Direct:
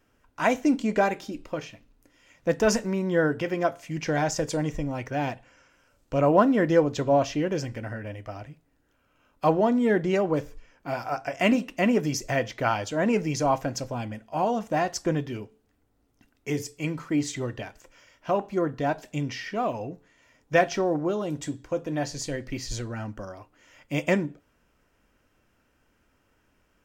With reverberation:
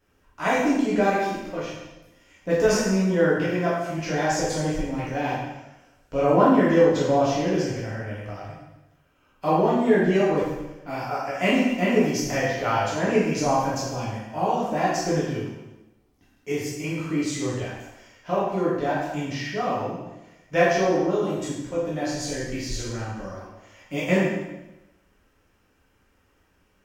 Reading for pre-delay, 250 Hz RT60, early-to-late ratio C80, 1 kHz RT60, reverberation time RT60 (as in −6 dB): 5 ms, 1.0 s, 3.0 dB, 0.95 s, 1.0 s